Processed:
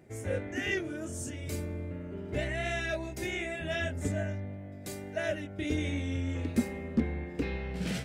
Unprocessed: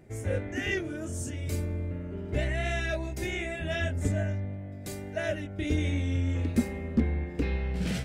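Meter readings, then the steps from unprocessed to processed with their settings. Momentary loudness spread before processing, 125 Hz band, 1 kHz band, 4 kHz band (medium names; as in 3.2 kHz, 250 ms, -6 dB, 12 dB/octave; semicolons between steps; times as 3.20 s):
7 LU, -5.5 dB, -1.0 dB, -1.0 dB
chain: high-pass 130 Hz 6 dB/octave; trim -1 dB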